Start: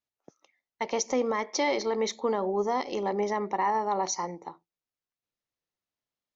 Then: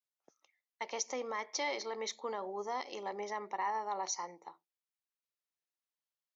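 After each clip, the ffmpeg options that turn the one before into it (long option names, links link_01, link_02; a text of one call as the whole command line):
ffmpeg -i in.wav -af "highpass=frequency=910:poles=1,volume=-5.5dB" out.wav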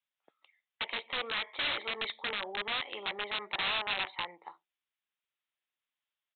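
ffmpeg -i in.wav -af "aresample=8000,aeval=exprs='(mod(44.7*val(0)+1,2)-1)/44.7':channel_layout=same,aresample=44100,tiltshelf=frequency=940:gain=-7,volume=3dB" out.wav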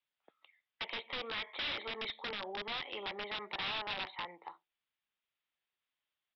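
ffmpeg -i in.wav -filter_complex "[0:a]acrossover=split=280|3000[link_01][link_02][link_03];[link_02]acompressor=threshold=-41dB:ratio=2[link_04];[link_01][link_04][link_03]amix=inputs=3:normalize=0,aresample=11025,asoftclip=type=hard:threshold=-35.5dB,aresample=44100,volume=1dB" out.wav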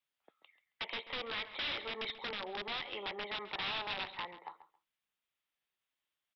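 ffmpeg -i in.wav -filter_complex "[0:a]asplit=2[link_01][link_02];[link_02]adelay=136,lowpass=frequency=3600:poles=1,volume=-13.5dB,asplit=2[link_03][link_04];[link_04]adelay=136,lowpass=frequency=3600:poles=1,volume=0.19[link_05];[link_01][link_03][link_05]amix=inputs=3:normalize=0" out.wav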